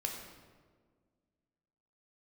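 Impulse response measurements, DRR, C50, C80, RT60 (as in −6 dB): 1.0 dB, 4.0 dB, 6.0 dB, 1.7 s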